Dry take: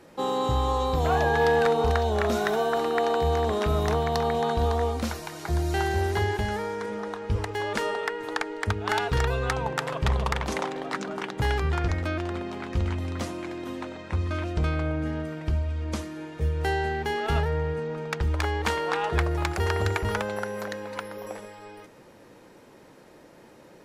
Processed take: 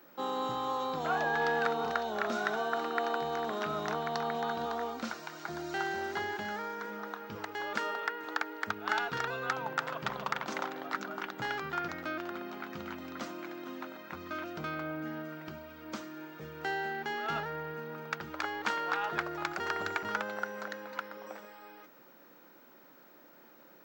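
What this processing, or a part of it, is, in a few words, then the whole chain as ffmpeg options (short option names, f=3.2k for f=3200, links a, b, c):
old television with a line whistle: -af "highpass=f=170:w=0.5412,highpass=f=170:w=1.3066,equalizer=f=190:t=q:w=4:g=-3,equalizer=f=440:t=q:w=4:g=-6,equalizer=f=1.4k:t=q:w=4:g=8,lowpass=f=6.9k:w=0.5412,lowpass=f=6.9k:w=1.3066,aeval=exprs='val(0)+0.00251*sin(2*PI*15734*n/s)':c=same,volume=-7dB"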